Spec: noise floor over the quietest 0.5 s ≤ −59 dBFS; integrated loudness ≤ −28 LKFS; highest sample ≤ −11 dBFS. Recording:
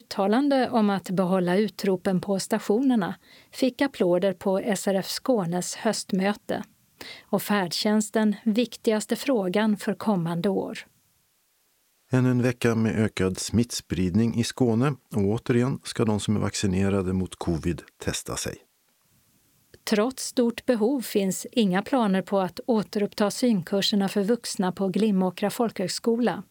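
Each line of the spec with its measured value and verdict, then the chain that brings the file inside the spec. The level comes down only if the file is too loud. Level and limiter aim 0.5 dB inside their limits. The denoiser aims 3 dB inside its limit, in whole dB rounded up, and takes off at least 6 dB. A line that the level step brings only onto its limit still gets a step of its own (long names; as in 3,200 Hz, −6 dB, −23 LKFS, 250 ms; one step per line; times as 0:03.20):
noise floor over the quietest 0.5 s −68 dBFS: in spec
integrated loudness −25.0 LKFS: out of spec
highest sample −9.0 dBFS: out of spec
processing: level −3.5 dB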